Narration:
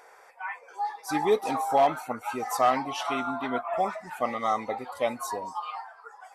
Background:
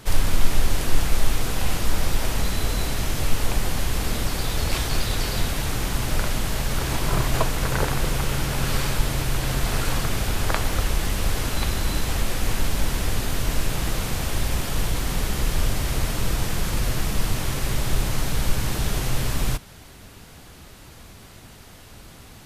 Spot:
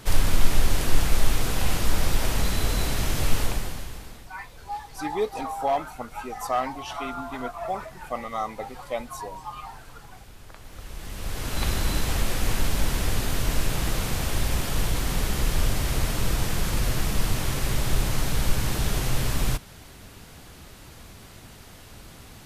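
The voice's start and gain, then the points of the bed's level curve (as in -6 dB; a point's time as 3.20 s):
3.90 s, -3.0 dB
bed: 3.39 s -0.5 dB
4.31 s -23 dB
10.55 s -23 dB
11.67 s -1 dB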